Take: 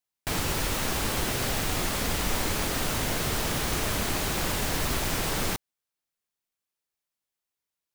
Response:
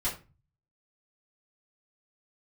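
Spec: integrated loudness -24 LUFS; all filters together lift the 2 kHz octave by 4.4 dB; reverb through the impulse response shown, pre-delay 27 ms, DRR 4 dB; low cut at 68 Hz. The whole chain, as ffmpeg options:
-filter_complex "[0:a]highpass=68,equalizer=f=2000:t=o:g=5.5,asplit=2[s0][s1];[1:a]atrim=start_sample=2205,adelay=27[s2];[s1][s2]afir=irnorm=-1:irlink=0,volume=0.316[s3];[s0][s3]amix=inputs=2:normalize=0,volume=1.12"

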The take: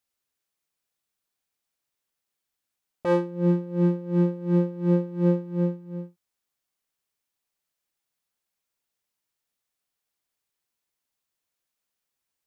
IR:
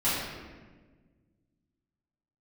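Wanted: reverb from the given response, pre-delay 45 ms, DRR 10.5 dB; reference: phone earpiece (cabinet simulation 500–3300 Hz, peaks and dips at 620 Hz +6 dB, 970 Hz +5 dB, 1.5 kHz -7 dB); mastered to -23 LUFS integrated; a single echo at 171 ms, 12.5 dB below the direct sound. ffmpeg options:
-filter_complex "[0:a]aecho=1:1:171:0.237,asplit=2[s0][s1];[1:a]atrim=start_sample=2205,adelay=45[s2];[s1][s2]afir=irnorm=-1:irlink=0,volume=0.075[s3];[s0][s3]amix=inputs=2:normalize=0,highpass=500,equalizer=f=620:t=q:w=4:g=6,equalizer=f=970:t=q:w=4:g=5,equalizer=f=1500:t=q:w=4:g=-7,lowpass=f=3300:w=0.5412,lowpass=f=3300:w=1.3066,volume=2.66"

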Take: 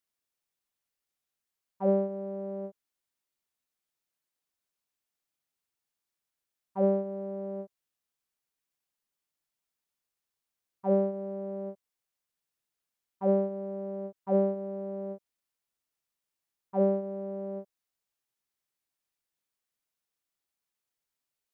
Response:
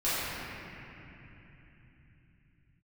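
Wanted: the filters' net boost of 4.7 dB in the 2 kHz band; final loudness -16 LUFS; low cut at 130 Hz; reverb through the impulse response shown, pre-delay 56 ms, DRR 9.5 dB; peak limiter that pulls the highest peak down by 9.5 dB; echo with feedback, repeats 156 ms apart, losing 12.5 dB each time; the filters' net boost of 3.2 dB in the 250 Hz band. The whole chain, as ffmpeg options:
-filter_complex "[0:a]highpass=130,equalizer=f=250:t=o:g=6,equalizer=f=2000:t=o:g=6,alimiter=limit=0.0708:level=0:latency=1,aecho=1:1:156|312|468:0.237|0.0569|0.0137,asplit=2[s0][s1];[1:a]atrim=start_sample=2205,adelay=56[s2];[s1][s2]afir=irnorm=-1:irlink=0,volume=0.0841[s3];[s0][s3]amix=inputs=2:normalize=0,volume=8.41"

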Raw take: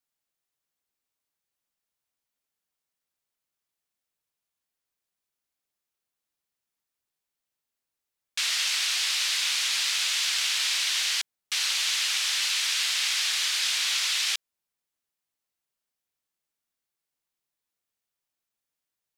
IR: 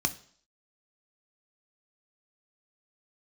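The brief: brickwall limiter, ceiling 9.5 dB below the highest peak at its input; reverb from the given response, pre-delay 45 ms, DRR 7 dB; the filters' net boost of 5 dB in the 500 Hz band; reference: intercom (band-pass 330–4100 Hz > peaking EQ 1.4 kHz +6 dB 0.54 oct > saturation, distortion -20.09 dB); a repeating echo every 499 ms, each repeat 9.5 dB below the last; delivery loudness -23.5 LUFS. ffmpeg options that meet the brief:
-filter_complex "[0:a]equalizer=f=500:t=o:g=7,alimiter=limit=0.075:level=0:latency=1,aecho=1:1:499|998|1497|1996:0.335|0.111|0.0365|0.012,asplit=2[s0][s1];[1:a]atrim=start_sample=2205,adelay=45[s2];[s1][s2]afir=irnorm=-1:irlink=0,volume=0.211[s3];[s0][s3]amix=inputs=2:normalize=0,highpass=330,lowpass=4100,equalizer=f=1400:t=o:w=0.54:g=6,asoftclip=threshold=0.0531,volume=2.66"

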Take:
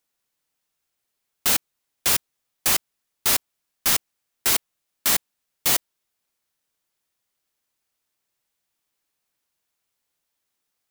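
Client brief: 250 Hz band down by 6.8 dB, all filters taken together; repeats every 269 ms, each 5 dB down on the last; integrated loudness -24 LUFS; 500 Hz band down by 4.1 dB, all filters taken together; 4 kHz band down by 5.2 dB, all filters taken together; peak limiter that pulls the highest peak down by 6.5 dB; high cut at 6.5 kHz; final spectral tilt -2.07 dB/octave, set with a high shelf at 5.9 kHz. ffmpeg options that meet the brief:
-af "lowpass=6500,equalizer=f=250:t=o:g=-8.5,equalizer=f=500:t=o:g=-3,equalizer=f=4000:t=o:g=-4,highshelf=f=5900:g=-5,alimiter=limit=0.0944:level=0:latency=1,aecho=1:1:269|538|807|1076|1345|1614|1883:0.562|0.315|0.176|0.0988|0.0553|0.031|0.0173,volume=3.35"

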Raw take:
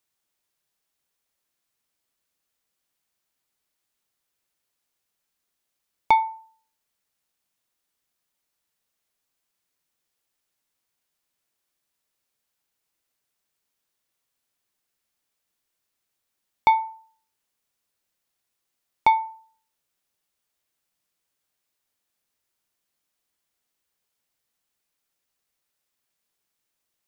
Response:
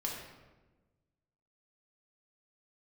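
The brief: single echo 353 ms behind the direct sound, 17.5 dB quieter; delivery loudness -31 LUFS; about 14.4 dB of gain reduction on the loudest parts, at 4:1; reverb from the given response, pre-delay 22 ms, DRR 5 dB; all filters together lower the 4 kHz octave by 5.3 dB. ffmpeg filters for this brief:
-filter_complex "[0:a]equalizer=f=4000:t=o:g=-6,acompressor=threshold=0.0282:ratio=4,aecho=1:1:353:0.133,asplit=2[s0][s1];[1:a]atrim=start_sample=2205,adelay=22[s2];[s1][s2]afir=irnorm=-1:irlink=0,volume=0.422[s3];[s0][s3]amix=inputs=2:normalize=0,volume=2.51"

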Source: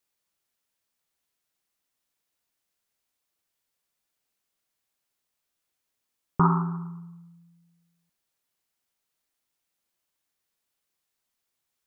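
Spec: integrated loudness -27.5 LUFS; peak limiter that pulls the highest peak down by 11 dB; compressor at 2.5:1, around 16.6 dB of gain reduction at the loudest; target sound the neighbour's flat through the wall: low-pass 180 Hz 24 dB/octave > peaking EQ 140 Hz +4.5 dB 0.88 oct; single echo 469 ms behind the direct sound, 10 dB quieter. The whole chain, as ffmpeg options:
-af "acompressor=threshold=0.00794:ratio=2.5,alimiter=level_in=3.16:limit=0.0631:level=0:latency=1,volume=0.316,lowpass=f=180:w=0.5412,lowpass=f=180:w=1.3066,equalizer=f=140:t=o:w=0.88:g=4.5,aecho=1:1:469:0.316,volume=7.5"

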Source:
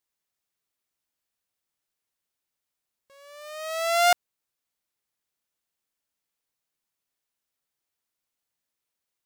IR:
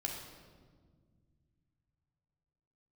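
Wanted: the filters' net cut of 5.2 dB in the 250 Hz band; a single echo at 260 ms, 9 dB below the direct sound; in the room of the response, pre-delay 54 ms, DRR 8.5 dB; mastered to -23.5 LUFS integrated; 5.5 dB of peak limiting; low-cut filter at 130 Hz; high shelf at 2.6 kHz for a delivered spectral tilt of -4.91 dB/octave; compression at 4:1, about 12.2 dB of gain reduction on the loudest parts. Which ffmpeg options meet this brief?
-filter_complex "[0:a]highpass=130,equalizer=f=250:t=o:g=-7.5,highshelf=f=2600:g=6.5,acompressor=threshold=0.0447:ratio=4,alimiter=limit=0.0891:level=0:latency=1,aecho=1:1:260:0.355,asplit=2[s0][s1];[1:a]atrim=start_sample=2205,adelay=54[s2];[s1][s2]afir=irnorm=-1:irlink=0,volume=0.335[s3];[s0][s3]amix=inputs=2:normalize=0,volume=3.76"

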